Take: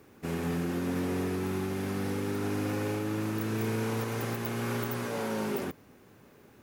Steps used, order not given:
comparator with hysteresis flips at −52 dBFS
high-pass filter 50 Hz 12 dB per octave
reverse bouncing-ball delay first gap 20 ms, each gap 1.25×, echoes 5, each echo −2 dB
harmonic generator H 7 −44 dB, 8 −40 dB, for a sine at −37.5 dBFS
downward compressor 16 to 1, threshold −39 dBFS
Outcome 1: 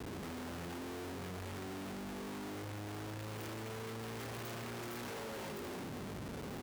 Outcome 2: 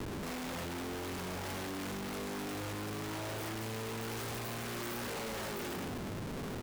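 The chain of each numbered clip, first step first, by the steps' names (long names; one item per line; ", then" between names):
reverse bouncing-ball delay, then downward compressor, then harmonic generator, then comparator with hysteresis, then high-pass filter
high-pass filter, then harmonic generator, then reverse bouncing-ball delay, then comparator with hysteresis, then downward compressor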